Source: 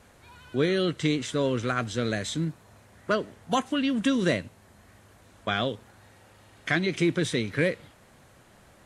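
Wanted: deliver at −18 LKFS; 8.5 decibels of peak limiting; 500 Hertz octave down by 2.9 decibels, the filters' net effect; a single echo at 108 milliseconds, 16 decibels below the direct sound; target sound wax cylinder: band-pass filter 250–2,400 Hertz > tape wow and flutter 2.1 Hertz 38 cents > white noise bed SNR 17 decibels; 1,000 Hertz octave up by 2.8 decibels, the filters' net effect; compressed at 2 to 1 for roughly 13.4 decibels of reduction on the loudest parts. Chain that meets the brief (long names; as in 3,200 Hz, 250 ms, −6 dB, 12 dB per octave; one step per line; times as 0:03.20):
parametric band 500 Hz −4.5 dB
parametric band 1,000 Hz +5.5 dB
downward compressor 2 to 1, threshold −45 dBFS
brickwall limiter −31.5 dBFS
band-pass filter 250–2,400 Hz
single-tap delay 108 ms −16 dB
tape wow and flutter 2.1 Hz 38 cents
white noise bed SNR 17 dB
level +28.5 dB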